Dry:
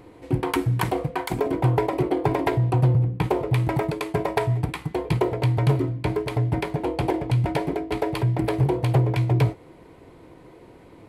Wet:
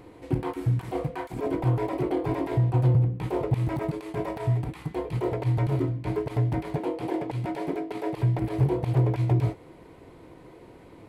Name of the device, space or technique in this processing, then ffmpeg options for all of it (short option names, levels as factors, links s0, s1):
de-esser from a sidechain: -filter_complex "[0:a]asettb=1/sr,asplit=3[s0][s1][s2];[s0]atrim=end=6.784[s3];[s1]atrim=start=6.78:end=8.16,asetpts=PTS-STARTPTS,afade=t=in:d=0.004:c=qsin,afade=t=out:st=1.376:d=0.004:c=qsin,highpass=180[s4];[s2]atrim=start=8.156[s5];[s3][s4]acrossfade=d=0.004:c1=hsin:c2=qsin[s6];[s6][s5]acrossfade=d=0.004:c1=qsin:c2=hsin,asplit=2[s7][s8];[s8]highpass=6400,apad=whole_len=488726[s9];[s7][s9]sidechaincompress=threshold=0.00224:ratio=16:attack=0.71:release=25,volume=0.891"